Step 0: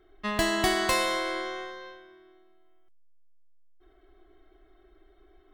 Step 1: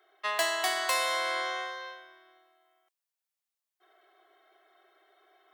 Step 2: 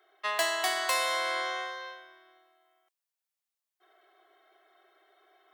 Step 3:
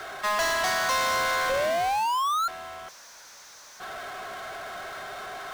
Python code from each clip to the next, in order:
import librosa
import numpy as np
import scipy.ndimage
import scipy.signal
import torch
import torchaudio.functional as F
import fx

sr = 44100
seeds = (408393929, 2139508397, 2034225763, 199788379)

y1 = fx.rider(x, sr, range_db=4, speed_s=0.5)
y1 = scipy.signal.sosfilt(scipy.signal.butter(4, 560.0, 'highpass', fs=sr, output='sos'), y1)
y1 = fx.high_shelf(y1, sr, hz=8900.0, db=3.5)
y2 = y1
y3 = fx.cabinet(y2, sr, low_hz=280.0, low_slope=24, high_hz=6100.0, hz=(340.0, 570.0, 1000.0, 1500.0, 2900.0, 6100.0), db=(-9, 5, 5, 7, -8, 10))
y3 = fx.spec_paint(y3, sr, seeds[0], shape='rise', start_s=1.49, length_s=0.99, low_hz=520.0, high_hz=1400.0, level_db=-28.0)
y3 = fx.power_curve(y3, sr, exponent=0.35)
y3 = y3 * librosa.db_to_amplitude(-7.0)